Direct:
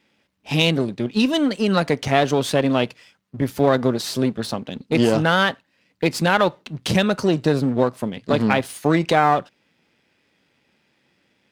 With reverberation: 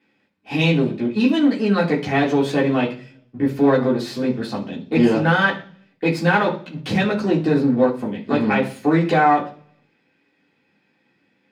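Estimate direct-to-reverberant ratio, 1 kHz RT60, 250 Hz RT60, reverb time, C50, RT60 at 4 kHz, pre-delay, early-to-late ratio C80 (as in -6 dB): -4.0 dB, 0.40 s, 0.70 s, 0.45 s, 11.0 dB, 0.55 s, 3 ms, 16.0 dB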